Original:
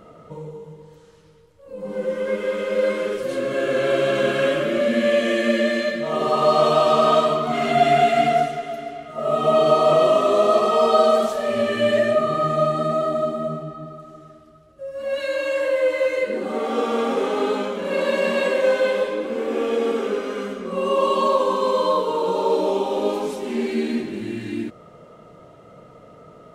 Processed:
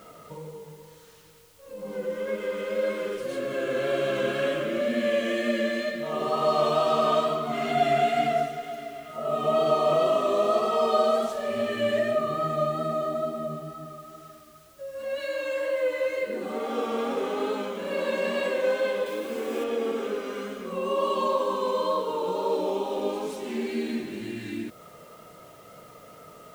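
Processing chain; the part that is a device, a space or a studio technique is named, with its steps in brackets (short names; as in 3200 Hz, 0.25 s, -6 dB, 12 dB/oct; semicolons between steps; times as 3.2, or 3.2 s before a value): noise-reduction cassette on a plain deck (mismatched tape noise reduction encoder only; wow and flutter 23 cents; white noise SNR 32 dB); 19.06–19.64 high shelf 3900 Hz +8 dB; gain -6.5 dB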